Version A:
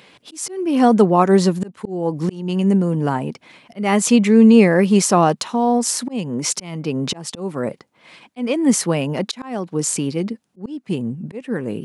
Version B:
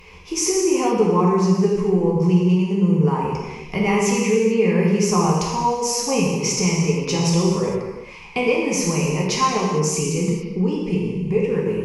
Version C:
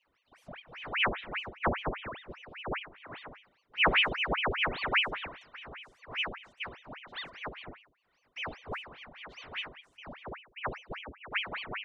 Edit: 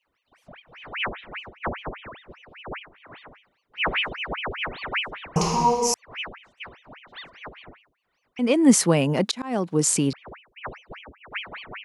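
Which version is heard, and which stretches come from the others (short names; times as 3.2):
C
5.36–5.94 from B
8.39–10.13 from A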